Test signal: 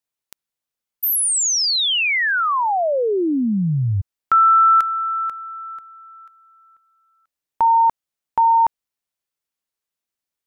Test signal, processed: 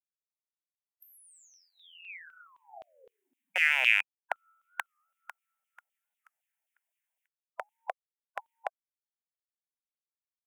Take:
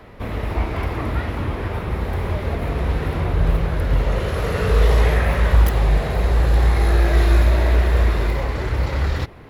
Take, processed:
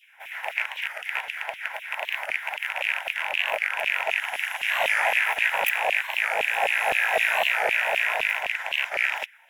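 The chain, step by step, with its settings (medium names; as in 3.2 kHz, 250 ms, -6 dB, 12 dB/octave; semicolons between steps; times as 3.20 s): rattle on loud lows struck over -19 dBFS, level -15 dBFS; spectral gate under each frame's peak -20 dB weak; static phaser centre 1.2 kHz, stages 6; dynamic bell 1.3 kHz, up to +4 dB, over -55 dBFS, Q 4.9; in parallel at -7 dB: crossover distortion -38 dBFS; on the sum: LFO high-pass saw down 3.9 Hz 560–3100 Hz; warped record 45 rpm, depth 160 cents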